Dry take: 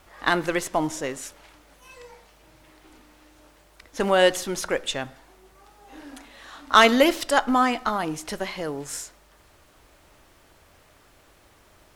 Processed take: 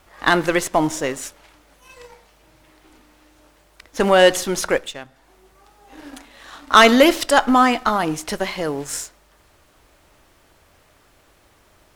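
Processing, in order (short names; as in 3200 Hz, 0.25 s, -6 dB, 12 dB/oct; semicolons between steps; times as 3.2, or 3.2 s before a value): 4.78–5.99 compressor 2:1, threshold -43 dBFS, peak gain reduction 11 dB; sample leveller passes 1; gain +2.5 dB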